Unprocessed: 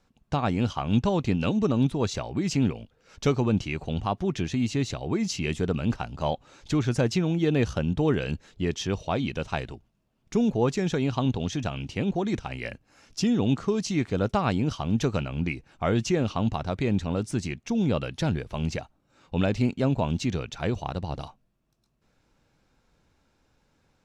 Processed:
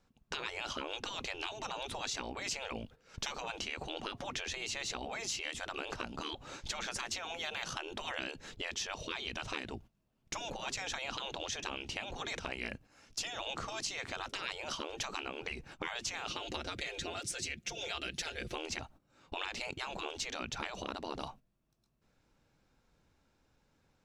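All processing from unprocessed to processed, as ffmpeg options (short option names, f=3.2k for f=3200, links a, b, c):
-filter_complex "[0:a]asettb=1/sr,asplit=3[a][b][c];[a]atrim=end=16.284[d];[b]atrim=start=16.28:end=18.55,asetpts=PTS-STARTPTS,afade=t=in:d=0.004:c=qsin,afade=t=out:st=2.266:d=0.004:c=qsin,highpass=47,equalizer=f=960:w=1.5:g=-14,aecho=1:1:5.7:0.92,atrim=end_sample=100107[e];[c]atrim=start=18.546[f];[d][e]acrossfade=d=0.004:c1=hsin:c2=qsin[g];[g][f]acrossfade=d=0.004:c1=qsin:c2=hsin,agate=range=-12dB:threshold=-51dB:ratio=16:detection=peak,afftfilt=real='re*lt(hypot(re,im),0.0708)':imag='im*lt(hypot(re,im),0.0708)':win_size=1024:overlap=0.75,acompressor=threshold=-45dB:ratio=3,volume=7dB"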